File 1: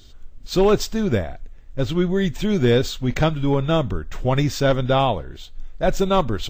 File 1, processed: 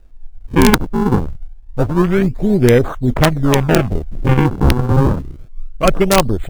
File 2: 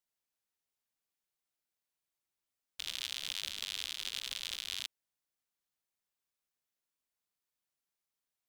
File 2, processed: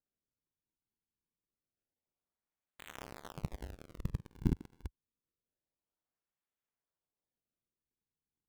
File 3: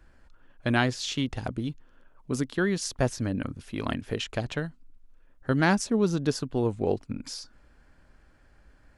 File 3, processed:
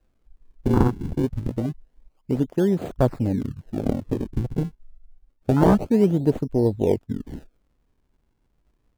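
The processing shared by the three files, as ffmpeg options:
ffmpeg -i in.wav -af "acrusher=samples=40:mix=1:aa=0.000001:lfo=1:lforange=64:lforate=0.27,afwtdn=0.0398,aeval=exprs='(mod(2.51*val(0)+1,2)-1)/2.51':channel_layout=same,volume=6.5dB" out.wav

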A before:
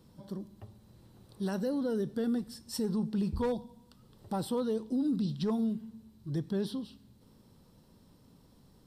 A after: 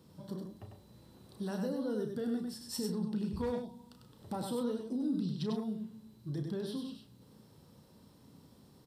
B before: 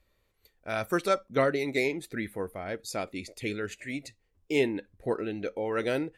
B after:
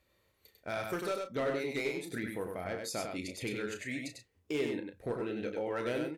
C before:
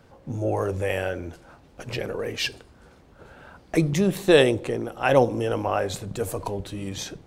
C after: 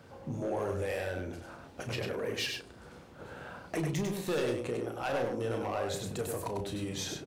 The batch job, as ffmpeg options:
ffmpeg -i in.wav -filter_complex "[0:a]highpass=76,acompressor=threshold=-38dB:ratio=2,volume=28.5dB,asoftclip=hard,volume=-28.5dB,asplit=2[link_01][link_02];[link_02]adelay=33,volume=-8dB[link_03];[link_01][link_03]amix=inputs=2:normalize=0,aecho=1:1:98:0.596" out.wav

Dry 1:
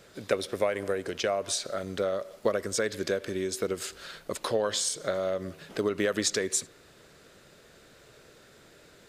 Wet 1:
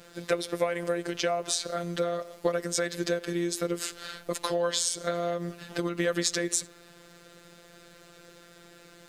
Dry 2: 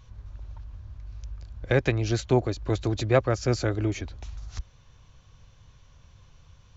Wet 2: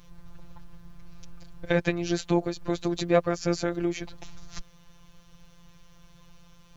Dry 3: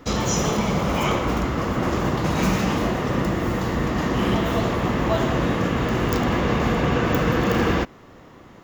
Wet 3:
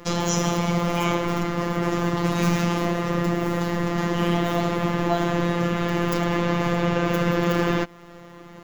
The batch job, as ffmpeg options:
ffmpeg -i in.wav -filter_complex "[0:a]asplit=2[link_01][link_02];[link_02]acompressor=threshold=-29dB:ratio=16,volume=0dB[link_03];[link_01][link_03]amix=inputs=2:normalize=0,acrusher=bits=10:mix=0:aa=0.000001,afftfilt=real='hypot(re,im)*cos(PI*b)':imag='0':win_size=1024:overlap=0.75" out.wav

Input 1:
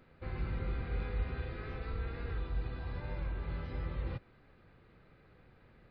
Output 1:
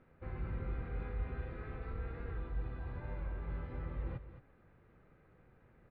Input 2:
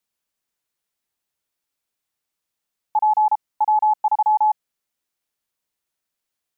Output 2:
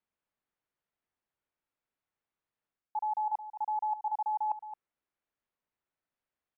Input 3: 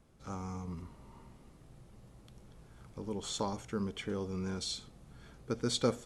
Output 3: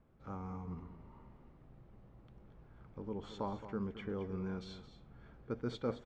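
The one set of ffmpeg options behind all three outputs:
ffmpeg -i in.wav -af "lowpass=2000,areverse,acompressor=threshold=-29dB:ratio=5,areverse,aecho=1:1:219:0.251,volume=-3dB" out.wav

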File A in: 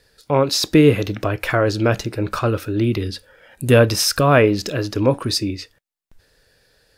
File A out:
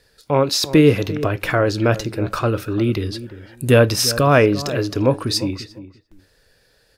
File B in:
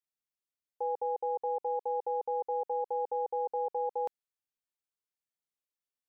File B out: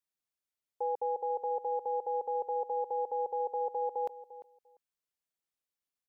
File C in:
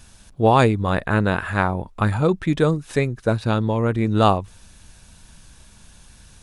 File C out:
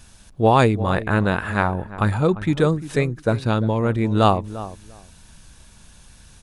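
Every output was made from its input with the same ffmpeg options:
ffmpeg -i in.wav -filter_complex "[0:a]asplit=2[link_01][link_02];[link_02]adelay=347,lowpass=frequency=1200:poles=1,volume=-14dB,asplit=2[link_03][link_04];[link_04]adelay=347,lowpass=frequency=1200:poles=1,volume=0.18[link_05];[link_01][link_03][link_05]amix=inputs=3:normalize=0" out.wav

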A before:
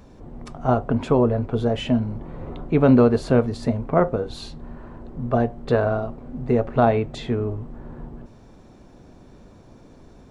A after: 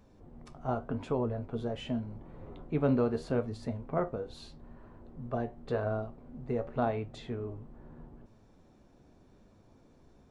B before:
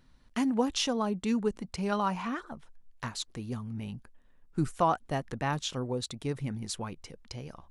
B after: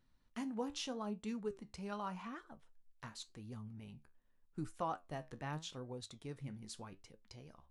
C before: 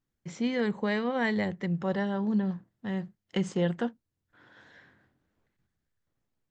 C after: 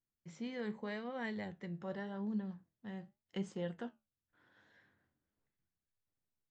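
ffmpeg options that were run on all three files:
ffmpeg -i in.wav -af "flanger=delay=9.2:depth=5.3:regen=69:speed=0.84:shape=sinusoidal,volume=-8.5dB" out.wav

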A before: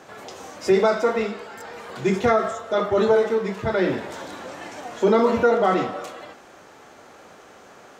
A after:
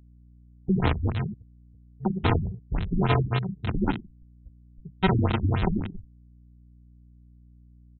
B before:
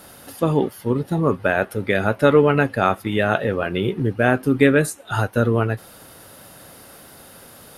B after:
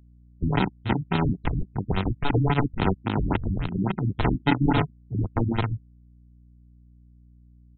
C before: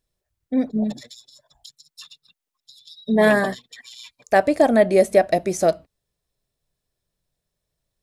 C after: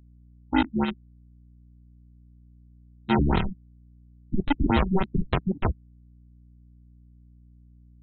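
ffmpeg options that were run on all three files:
ffmpeg -i in.wav -filter_complex "[0:a]afftfilt=real='re*gte(hypot(re,im),0.158)':imag='im*gte(hypot(re,im),0.158)':win_size=1024:overlap=0.75,aresample=16000,acrusher=samples=28:mix=1:aa=0.000001,aresample=44100,asoftclip=type=hard:threshold=-9dB,aeval=exprs='val(0)+0.00282*(sin(2*PI*60*n/s)+sin(2*PI*2*60*n/s)/2+sin(2*PI*3*60*n/s)/3+sin(2*PI*4*60*n/s)/4+sin(2*PI*5*60*n/s)/5)':channel_layout=same,acrossover=split=330[link_01][link_02];[link_01]asoftclip=type=tanh:threshold=-20dB[link_03];[link_02]acrusher=bits=3:mix=0:aa=0.000001[link_04];[link_03][link_04]amix=inputs=2:normalize=0,afftfilt=real='re*lt(b*sr/1024,300*pow(4200/300,0.5+0.5*sin(2*PI*3.6*pts/sr)))':imag='im*lt(b*sr/1024,300*pow(4200/300,0.5+0.5*sin(2*PI*3.6*pts/sr)))':win_size=1024:overlap=0.75" out.wav

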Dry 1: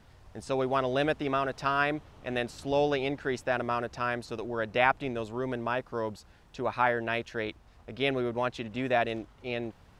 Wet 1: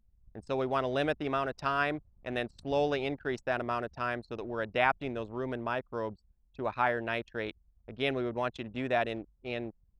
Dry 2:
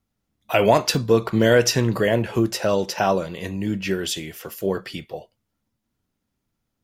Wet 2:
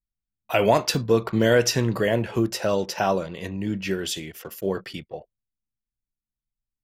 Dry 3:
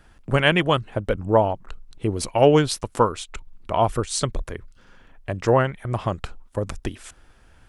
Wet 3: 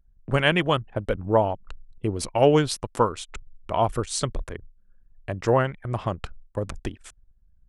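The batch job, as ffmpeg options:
ffmpeg -i in.wav -af "anlmdn=0.251,volume=-2.5dB" out.wav

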